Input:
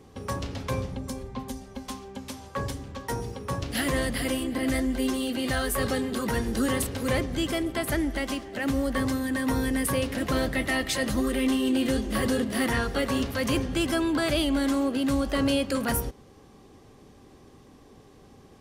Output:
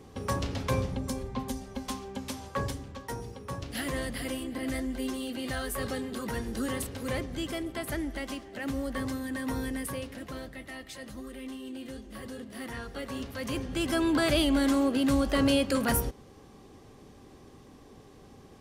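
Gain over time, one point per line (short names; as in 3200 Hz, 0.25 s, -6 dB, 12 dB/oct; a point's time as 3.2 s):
2.45 s +1 dB
3.16 s -6.5 dB
9.64 s -6.5 dB
10.55 s -16 dB
12.3 s -16 dB
13.61 s -7 dB
14.09 s 0 dB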